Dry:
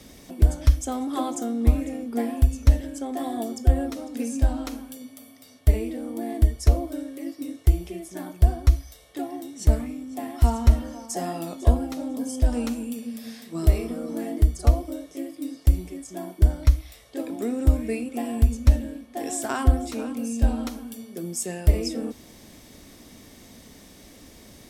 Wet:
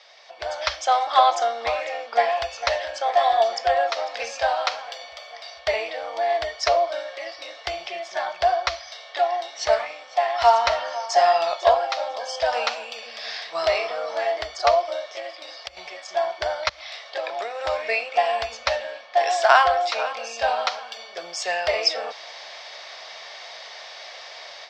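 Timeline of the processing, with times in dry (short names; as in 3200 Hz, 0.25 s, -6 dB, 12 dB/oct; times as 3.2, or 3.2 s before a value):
1.8–2.65 echo throw 0.45 s, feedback 80%, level -13 dB
15.08–15.77 compressor 10:1, threshold -28 dBFS
16.69–17.64 compressor, threshold -28 dBFS
whole clip: elliptic band-pass 650–4900 Hz, stop band 40 dB; AGC gain up to 12.5 dB; gain +3.5 dB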